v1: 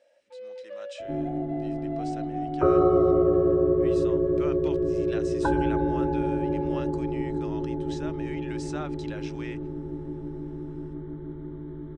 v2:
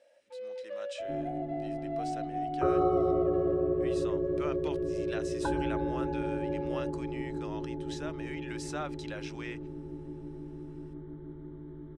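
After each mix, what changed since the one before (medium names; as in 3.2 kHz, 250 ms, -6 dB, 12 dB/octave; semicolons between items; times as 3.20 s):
speech: remove low-pass 8.9 kHz 24 dB/octave; second sound -7.0 dB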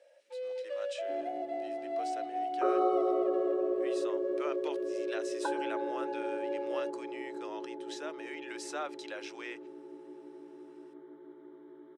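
first sound: remove band-pass filter 1 kHz, Q 0.63; master: add high-pass 360 Hz 24 dB/octave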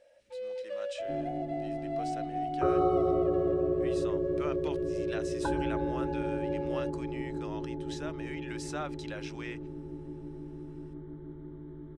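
master: remove high-pass 360 Hz 24 dB/octave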